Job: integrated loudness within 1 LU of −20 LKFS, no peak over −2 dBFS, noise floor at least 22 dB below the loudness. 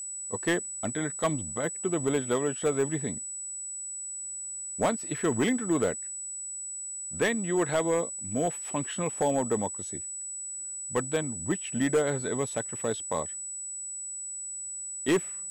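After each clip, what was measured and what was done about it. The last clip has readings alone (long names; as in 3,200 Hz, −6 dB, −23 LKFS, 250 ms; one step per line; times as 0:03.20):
share of clipped samples 0.5%; peaks flattened at −19.0 dBFS; interfering tone 7,900 Hz; level of the tone −35 dBFS; integrated loudness −30.0 LKFS; sample peak −19.0 dBFS; target loudness −20.0 LKFS
→ clipped peaks rebuilt −19 dBFS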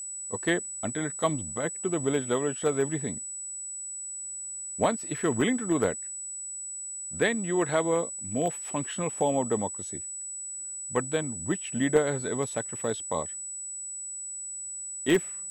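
share of clipped samples 0.0%; interfering tone 7,900 Hz; level of the tone −35 dBFS
→ notch filter 7,900 Hz, Q 30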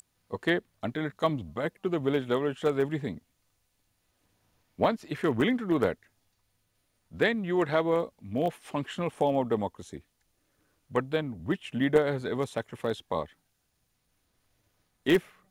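interfering tone none found; integrated loudness −29.5 LKFS; sample peak −9.5 dBFS; target loudness −20.0 LKFS
→ level +9.5 dB
brickwall limiter −2 dBFS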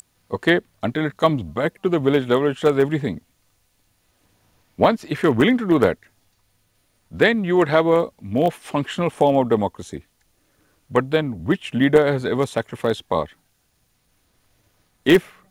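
integrated loudness −20.0 LKFS; sample peak −2.0 dBFS; background noise floor −66 dBFS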